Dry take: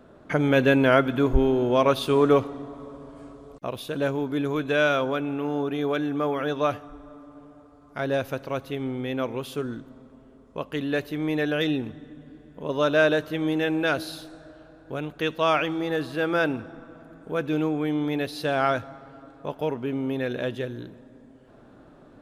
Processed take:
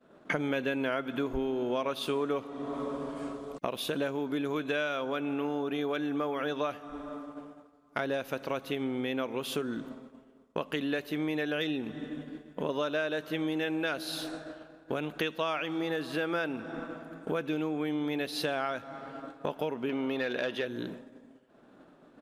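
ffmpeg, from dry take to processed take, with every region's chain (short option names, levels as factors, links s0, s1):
-filter_complex "[0:a]asettb=1/sr,asplit=3[s0][s1][s2];[s0]atrim=end=19.894[s3];[s1]atrim=start=19.89:end=20.67,asetpts=PTS-STARTPTS,afade=t=in:d=0.004:c=qsin,afade=t=out:st=0.776:d=0.004:c=qsin,equalizer=f=9500:w=0.51:g=-5,bandreject=f=7400:w=6,asplit=2[s4][s5];[s5]highpass=f=720:p=1,volume=3.98,asoftclip=type=tanh:threshold=0.15[s6];[s4][s6]amix=inputs=2:normalize=0,lowpass=f=7400:p=1,volume=0.501[s7];[s2]atrim=start=20.666[s8];[s3][s7]acrossfade=d=0.004:c1=hsin:c2=qsin[s9];[s9][s8]acrossfade=d=0.004:c1=qsin:c2=hsin,agate=range=0.0224:threshold=0.00891:ratio=3:detection=peak,firequalizer=gain_entry='entry(110,0);entry(170,11);entry(2800,15);entry(4400,13)':delay=0.05:min_phase=1,acompressor=threshold=0.0501:ratio=6,volume=0.631"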